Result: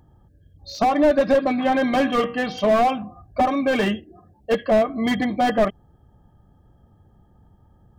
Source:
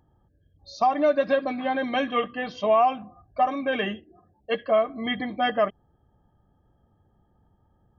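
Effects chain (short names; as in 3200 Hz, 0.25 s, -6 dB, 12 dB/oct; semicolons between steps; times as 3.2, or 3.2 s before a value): tone controls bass +4 dB, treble +2 dB; 1.64–2.79 de-hum 94.71 Hz, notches 32; slew limiter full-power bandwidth 61 Hz; gain +6.5 dB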